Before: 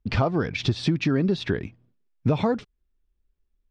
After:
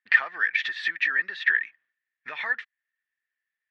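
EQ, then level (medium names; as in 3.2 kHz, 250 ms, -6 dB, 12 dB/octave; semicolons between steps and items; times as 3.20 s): resonant high-pass 1.8 kHz, resonance Q 16; distance through air 120 m; peaking EQ 5.2 kHz -6 dB 0.63 oct; 0.0 dB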